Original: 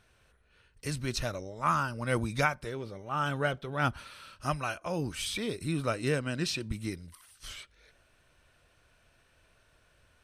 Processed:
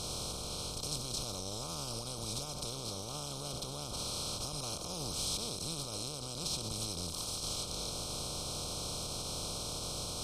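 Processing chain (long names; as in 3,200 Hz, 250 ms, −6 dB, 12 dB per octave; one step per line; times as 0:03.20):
compressor on every frequency bin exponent 0.2
brickwall limiter −17 dBFS, peak gain reduction 10.5 dB
Butterworth band-reject 1,800 Hz, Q 0.6
guitar amp tone stack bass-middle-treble 5-5-5
level +4.5 dB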